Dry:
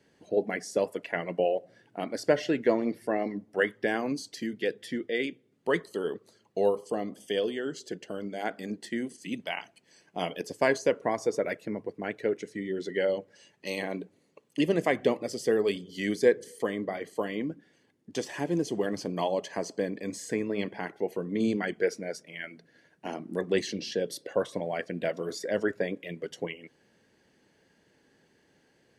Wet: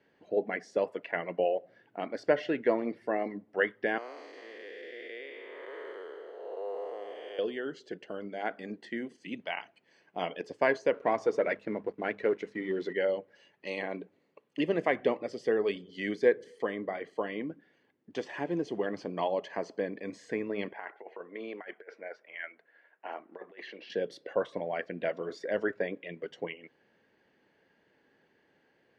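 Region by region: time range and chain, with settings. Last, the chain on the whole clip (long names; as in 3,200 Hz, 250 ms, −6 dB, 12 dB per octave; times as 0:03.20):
0:03.98–0:07.39: spectrum smeared in time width 454 ms + high-pass filter 420 Hz 24 dB per octave + single-tap delay 397 ms −13 dB
0:10.94–0:12.93: mains-hum notches 50/100/150/200/250 Hz + leveller curve on the samples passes 1
0:20.73–0:23.90: band-pass filter 660–2,300 Hz + compressor whose output falls as the input rises −39 dBFS, ratio −0.5
whole clip: low-pass filter 2,700 Hz 12 dB per octave; low-shelf EQ 250 Hz −10 dB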